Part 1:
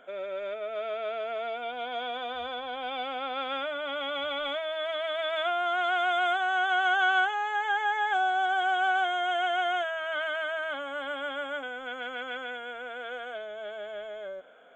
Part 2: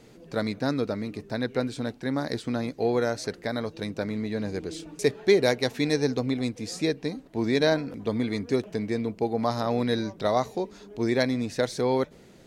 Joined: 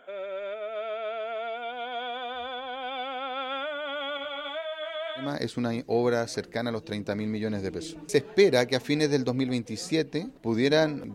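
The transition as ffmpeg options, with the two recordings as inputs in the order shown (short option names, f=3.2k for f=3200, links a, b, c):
-filter_complex "[0:a]asettb=1/sr,asplit=3[a][b][c];[a]atrim=end=4.174[d];[b]atrim=start=4.17:end=5.35,asetpts=PTS-STARTPTS,afade=t=in:d=0.004:c=qsin,afade=t=out:st=1.176:d=0.004:c=qsin,flanger=delay=17.5:depth=3.6:speed=1.9[e];[c]atrim=start=5.346[f];[d][e]acrossfade=d=0.004:c1=hsin:c2=qsin[g];[g][f]acrossfade=d=0.004:c1=qsin:c2=hsin,apad=whole_dur=11.14,atrim=end=11.14,atrim=end=5.35,asetpts=PTS-STARTPTS[h];[1:a]atrim=start=2.05:end=8.04,asetpts=PTS-STARTPTS[i];[h][i]acrossfade=d=0.2:c1=tri:c2=tri"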